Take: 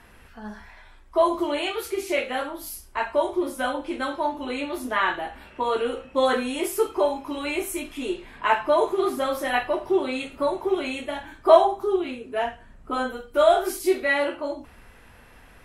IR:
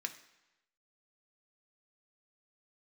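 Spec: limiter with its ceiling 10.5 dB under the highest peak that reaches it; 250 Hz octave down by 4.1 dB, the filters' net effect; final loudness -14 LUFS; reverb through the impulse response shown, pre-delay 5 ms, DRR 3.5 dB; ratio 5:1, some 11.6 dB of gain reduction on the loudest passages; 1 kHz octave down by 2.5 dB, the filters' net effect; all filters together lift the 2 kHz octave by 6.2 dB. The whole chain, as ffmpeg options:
-filter_complex "[0:a]equalizer=f=250:t=o:g=-6,equalizer=f=1000:t=o:g=-5,equalizer=f=2000:t=o:g=9,acompressor=threshold=0.0631:ratio=5,alimiter=limit=0.0794:level=0:latency=1,asplit=2[s0][s1];[1:a]atrim=start_sample=2205,adelay=5[s2];[s1][s2]afir=irnorm=-1:irlink=0,volume=0.668[s3];[s0][s3]amix=inputs=2:normalize=0,volume=7.08"

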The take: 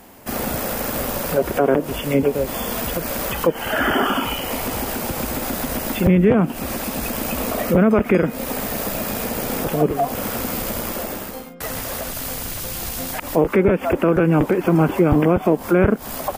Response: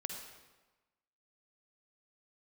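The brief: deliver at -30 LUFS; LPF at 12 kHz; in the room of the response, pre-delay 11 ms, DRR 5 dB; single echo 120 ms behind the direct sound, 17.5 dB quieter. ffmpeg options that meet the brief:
-filter_complex "[0:a]lowpass=12000,aecho=1:1:120:0.133,asplit=2[s0][s1];[1:a]atrim=start_sample=2205,adelay=11[s2];[s1][s2]afir=irnorm=-1:irlink=0,volume=0.596[s3];[s0][s3]amix=inputs=2:normalize=0,volume=0.299"

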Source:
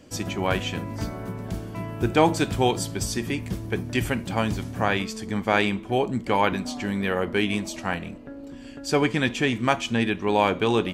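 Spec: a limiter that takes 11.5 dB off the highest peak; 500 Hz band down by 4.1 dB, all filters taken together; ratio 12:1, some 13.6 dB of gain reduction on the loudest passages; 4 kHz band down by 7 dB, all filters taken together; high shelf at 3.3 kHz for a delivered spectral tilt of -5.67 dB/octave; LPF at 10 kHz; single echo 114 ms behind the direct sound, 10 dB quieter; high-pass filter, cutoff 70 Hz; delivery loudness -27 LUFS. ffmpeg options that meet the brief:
-af "highpass=70,lowpass=10000,equalizer=f=500:t=o:g=-5,highshelf=f=3300:g=-5,equalizer=f=4000:t=o:g=-6,acompressor=threshold=0.0282:ratio=12,alimiter=level_in=2.11:limit=0.0631:level=0:latency=1,volume=0.473,aecho=1:1:114:0.316,volume=4.22"

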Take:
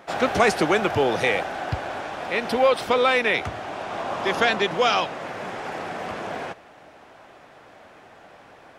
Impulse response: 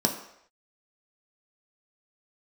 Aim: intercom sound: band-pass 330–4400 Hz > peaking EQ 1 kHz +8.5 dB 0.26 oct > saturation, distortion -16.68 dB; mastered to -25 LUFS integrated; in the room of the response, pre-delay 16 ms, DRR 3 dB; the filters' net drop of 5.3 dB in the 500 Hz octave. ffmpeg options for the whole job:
-filter_complex "[0:a]equalizer=f=500:t=o:g=-5.5,asplit=2[s0][s1];[1:a]atrim=start_sample=2205,adelay=16[s2];[s1][s2]afir=irnorm=-1:irlink=0,volume=0.211[s3];[s0][s3]amix=inputs=2:normalize=0,highpass=330,lowpass=4400,equalizer=f=1000:t=o:w=0.26:g=8.5,asoftclip=threshold=0.237,volume=0.891"

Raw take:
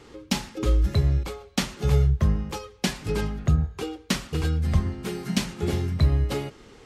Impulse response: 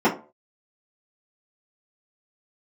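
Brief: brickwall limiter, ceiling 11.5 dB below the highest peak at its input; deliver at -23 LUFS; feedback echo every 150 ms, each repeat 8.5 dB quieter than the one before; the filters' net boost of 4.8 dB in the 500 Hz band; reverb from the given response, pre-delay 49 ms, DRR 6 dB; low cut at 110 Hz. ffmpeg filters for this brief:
-filter_complex "[0:a]highpass=110,equalizer=f=500:t=o:g=6,alimiter=limit=0.112:level=0:latency=1,aecho=1:1:150|300|450|600:0.376|0.143|0.0543|0.0206,asplit=2[s0][s1];[1:a]atrim=start_sample=2205,adelay=49[s2];[s1][s2]afir=irnorm=-1:irlink=0,volume=0.0562[s3];[s0][s3]amix=inputs=2:normalize=0,volume=1.88"

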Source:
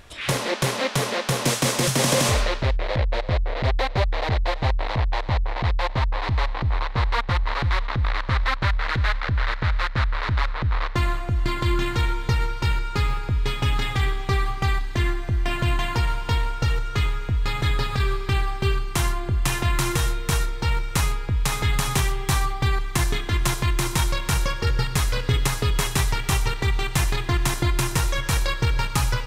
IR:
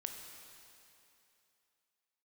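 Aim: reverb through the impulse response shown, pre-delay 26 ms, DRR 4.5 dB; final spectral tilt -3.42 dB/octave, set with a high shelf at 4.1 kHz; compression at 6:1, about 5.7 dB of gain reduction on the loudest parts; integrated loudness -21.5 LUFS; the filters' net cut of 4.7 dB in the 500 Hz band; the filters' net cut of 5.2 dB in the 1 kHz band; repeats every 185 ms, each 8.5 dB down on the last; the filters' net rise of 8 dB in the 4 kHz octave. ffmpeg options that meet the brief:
-filter_complex "[0:a]equalizer=f=500:t=o:g=-4.5,equalizer=f=1000:t=o:g=-6.5,equalizer=f=4000:t=o:g=6,highshelf=f=4100:g=7.5,acompressor=threshold=0.0891:ratio=6,aecho=1:1:185|370|555|740:0.376|0.143|0.0543|0.0206,asplit=2[s0][s1];[1:a]atrim=start_sample=2205,adelay=26[s2];[s1][s2]afir=irnorm=-1:irlink=0,volume=0.708[s3];[s0][s3]amix=inputs=2:normalize=0,volume=1.33"

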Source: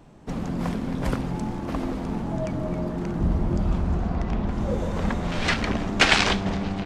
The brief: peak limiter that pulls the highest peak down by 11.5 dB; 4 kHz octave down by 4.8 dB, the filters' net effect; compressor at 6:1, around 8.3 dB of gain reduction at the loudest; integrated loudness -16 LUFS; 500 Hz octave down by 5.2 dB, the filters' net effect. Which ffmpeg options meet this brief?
-af "equalizer=f=500:t=o:g=-7,equalizer=f=4000:t=o:g=-6.5,acompressor=threshold=0.0562:ratio=6,volume=7.5,alimiter=limit=0.473:level=0:latency=1"

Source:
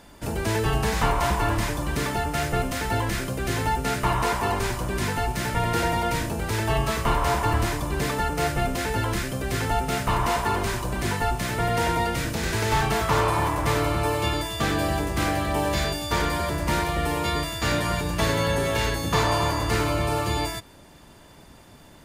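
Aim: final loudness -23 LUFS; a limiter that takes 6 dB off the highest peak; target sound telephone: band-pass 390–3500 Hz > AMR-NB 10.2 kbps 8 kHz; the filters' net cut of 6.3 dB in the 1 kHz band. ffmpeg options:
-af "equalizer=f=1000:t=o:g=-8,alimiter=limit=0.133:level=0:latency=1,highpass=390,lowpass=3500,volume=3.35" -ar 8000 -c:a libopencore_amrnb -b:a 10200

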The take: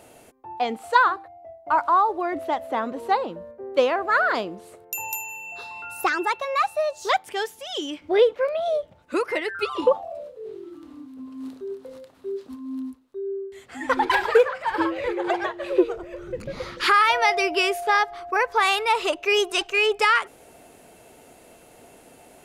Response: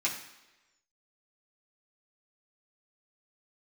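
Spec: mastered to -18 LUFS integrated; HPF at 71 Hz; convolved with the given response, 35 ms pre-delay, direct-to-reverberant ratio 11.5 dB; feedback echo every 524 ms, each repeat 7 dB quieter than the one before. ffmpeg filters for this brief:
-filter_complex "[0:a]highpass=71,aecho=1:1:524|1048|1572|2096|2620:0.447|0.201|0.0905|0.0407|0.0183,asplit=2[s0][s1];[1:a]atrim=start_sample=2205,adelay=35[s2];[s1][s2]afir=irnorm=-1:irlink=0,volume=0.119[s3];[s0][s3]amix=inputs=2:normalize=0,volume=1.68"

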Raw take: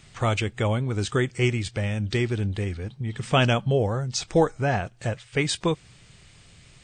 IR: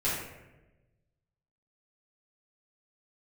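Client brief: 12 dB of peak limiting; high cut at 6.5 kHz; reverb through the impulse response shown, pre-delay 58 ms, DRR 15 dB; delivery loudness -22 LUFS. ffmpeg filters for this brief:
-filter_complex "[0:a]lowpass=6500,alimiter=limit=0.112:level=0:latency=1,asplit=2[s0][s1];[1:a]atrim=start_sample=2205,adelay=58[s2];[s1][s2]afir=irnorm=-1:irlink=0,volume=0.0631[s3];[s0][s3]amix=inputs=2:normalize=0,volume=2.24"

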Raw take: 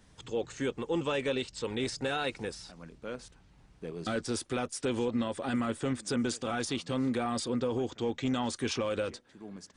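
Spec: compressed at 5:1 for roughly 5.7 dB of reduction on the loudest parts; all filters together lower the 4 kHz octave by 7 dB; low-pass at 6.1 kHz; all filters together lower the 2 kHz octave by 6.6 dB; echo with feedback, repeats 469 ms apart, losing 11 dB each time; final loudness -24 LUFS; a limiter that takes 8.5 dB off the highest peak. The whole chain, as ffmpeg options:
-af "lowpass=6100,equalizer=f=2000:t=o:g=-8,equalizer=f=4000:t=o:g=-5.5,acompressor=threshold=0.0224:ratio=5,alimiter=level_in=2.66:limit=0.0631:level=0:latency=1,volume=0.376,aecho=1:1:469|938|1407:0.282|0.0789|0.0221,volume=8.41"

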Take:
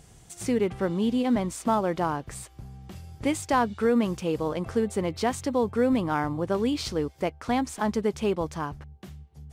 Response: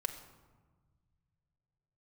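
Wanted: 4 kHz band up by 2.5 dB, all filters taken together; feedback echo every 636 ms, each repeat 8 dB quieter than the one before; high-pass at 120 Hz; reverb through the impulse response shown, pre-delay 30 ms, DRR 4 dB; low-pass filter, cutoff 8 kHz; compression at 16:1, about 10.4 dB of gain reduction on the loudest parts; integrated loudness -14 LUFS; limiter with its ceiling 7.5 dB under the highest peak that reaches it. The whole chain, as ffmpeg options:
-filter_complex "[0:a]highpass=120,lowpass=8000,equalizer=f=4000:t=o:g=3.5,acompressor=threshold=0.0355:ratio=16,alimiter=level_in=1.19:limit=0.0631:level=0:latency=1,volume=0.841,aecho=1:1:636|1272|1908|2544|3180:0.398|0.159|0.0637|0.0255|0.0102,asplit=2[s0][s1];[1:a]atrim=start_sample=2205,adelay=30[s2];[s1][s2]afir=irnorm=-1:irlink=0,volume=0.562[s3];[s0][s3]amix=inputs=2:normalize=0,volume=10.6"

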